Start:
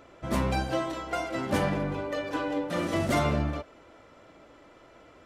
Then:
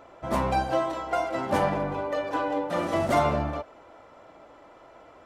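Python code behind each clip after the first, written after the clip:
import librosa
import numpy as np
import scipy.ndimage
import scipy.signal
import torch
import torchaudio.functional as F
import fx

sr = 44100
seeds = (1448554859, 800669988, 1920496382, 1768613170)

y = fx.peak_eq(x, sr, hz=820.0, db=10.0, octaves=1.4)
y = y * 10.0 ** (-2.5 / 20.0)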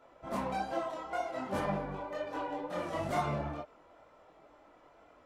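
y = fx.wow_flutter(x, sr, seeds[0], rate_hz=2.1, depth_cents=29.0)
y = fx.chorus_voices(y, sr, voices=6, hz=1.2, base_ms=23, depth_ms=3.7, mix_pct=50)
y = y * 10.0 ** (-6.0 / 20.0)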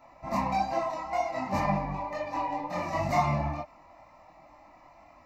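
y = fx.fixed_phaser(x, sr, hz=2200.0, stages=8)
y = y * 10.0 ** (9.0 / 20.0)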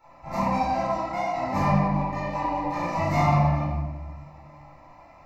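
y = fx.room_shoebox(x, sr, seeds[1], volume_m3=800.0, walls='mixed', distance_m=4.3)
y = y * 10.0 ** (-5.5 / 20.0)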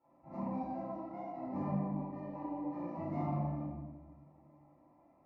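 y = fx.bandpass_q(x, sr, hz=300.0, q=1.7)
y = y * 10.0 ** (-6.0 / 20.0)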